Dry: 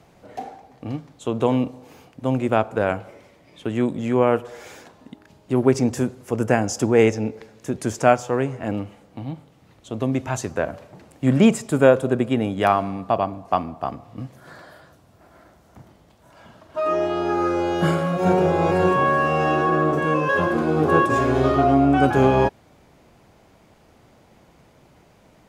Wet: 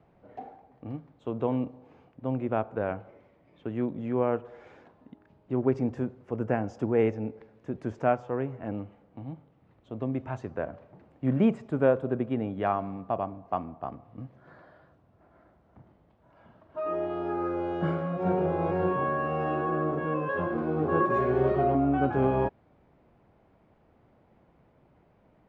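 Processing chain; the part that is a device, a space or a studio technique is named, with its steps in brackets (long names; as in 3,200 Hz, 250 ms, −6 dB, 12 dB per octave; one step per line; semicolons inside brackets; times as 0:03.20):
0:21.00–0:21.75: comb filter 5.3 ms, depth 93%
phone in a pocket (low-pass filter 3,100 Hz 12 dB per octave; high-shelf EQ 2,300 Hz −11 dB)
level −8 dB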